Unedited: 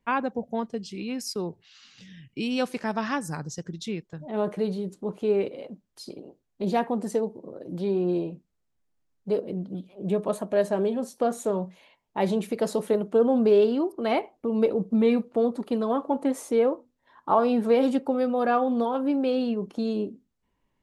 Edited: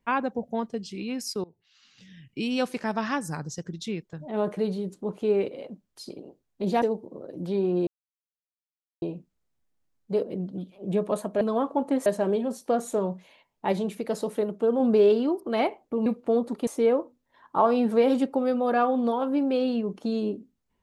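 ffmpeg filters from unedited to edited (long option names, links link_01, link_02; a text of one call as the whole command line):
ffmpeg -i in.wav -filter_complex "[0:a]asplit=10[link_01][link_02][link_03][link_04][link_05][link_06][link_07][link_08][link_09][link_10];[link_01]atrim=end=1.44,asetpts=PTS-STARTPTS,afade=type=out:start_time=1.436:duration=0.004:curve=hsin:silence=0.0668344[link_11];[link_02]atrim=start=1.44:end=6.822,asetpts=PTS-STARTPTS,afade=type=in:duration=0.94:silence=0.0668344[link_12];[link_03]atrim=start=7.138:end=8.19,asetpts=PTS-STARTPTS,afade=type=out:start_time=1.048:duration=0.004:curve=hsin,apad=pad_dur=1.15[link_13];[link_04]atrim=start=8.19:end=10.582,asetpts=PTS-STARTPTS,afade=type=in:duration=0.004:curve=hsin[link_14];[link_05]atrim=start=15.748:end=16.402[link_15];[link_06]atrim=start=10.578:end=12.242[link_16];[link_07]atrim=start=12.238:end=13.322,asetpts=PTS-STARTPTS,volume=-3dB[link_17];[link_08]atrim=start=13.318:end=14.582[link_18];[link_09]atrim=start=15.138:end=15.752[link_19];[link_10]atrim=start=16.398[link_20];[link_11][link_12]concat=n=2:v=0:a=1[link_21];[link_13][link_14]concat=n=2:v=0:a=1[link_22];[link_21][link_22]acrossfade=duration=0.004:curve1=hsin:curve2=hsin[link_23];[link_23][link_15]acrossfade=duration=0.004:curve1=hsin:curve2=hsin[link_24];[link_24][link_16]acrossfade=duration=0.004:curve1=hsin:curve2=hsin[link_25];[link_25][link_17]acrossfade=duration=0.004:curve1=hsin:curve2=hsin[link_26];[link_26][link_18]acrossfade=duration=0.004:curve1=hsin:curve2=hsin[link_27];[link_27][link_19]acrossfade=duration=0.004:curve1=hsin:curve2=hsin[link_28];[link_28][link_20]acrossfade=duration=0.004:curve1=hsin:curve2=hsin" out.wav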